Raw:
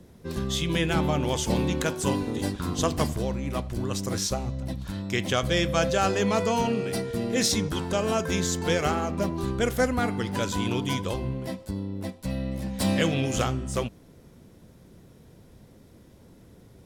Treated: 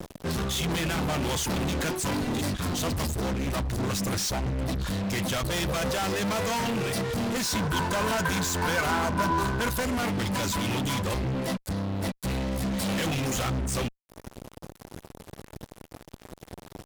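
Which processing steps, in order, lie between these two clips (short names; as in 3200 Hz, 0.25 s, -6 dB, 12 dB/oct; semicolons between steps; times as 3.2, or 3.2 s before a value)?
dynamic EQ 420 Hz, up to -5 dB, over -40 dBFS, Q 1.6; reverb removal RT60 0.59 s; fuzz box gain 43 dB, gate -49 dBFS; limiter -18 dBFS, peak gain reduction 8 dB; 7.44–9.8 small resonant body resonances 1000/1500 Hz, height 14 dB, ringing for 45 ms; gain -7.5 dB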